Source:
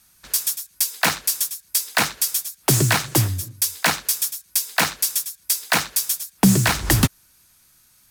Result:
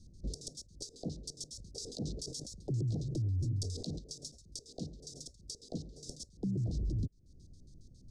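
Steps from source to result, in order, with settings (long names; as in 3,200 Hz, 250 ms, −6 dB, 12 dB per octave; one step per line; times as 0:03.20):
auto-filter low-pass square 7.3 Hz 750–2,200 Hz
flat-topped bell 5,700 Hz +15 dB
downward compressor 16 to 1, threshold −30 dBFS, peak gain reduction 21 dB
inverse Chebyshev band-stop filter 1,100–2,200 Hz, stop band 70 dB
spectral tilt −3 dB per octave
brickwall limiter −31.5 dBFS, peak gain reduction 14 dB
0:01.46–0:03.99: level that may fall only so fast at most 40 dB per second
level +3 dB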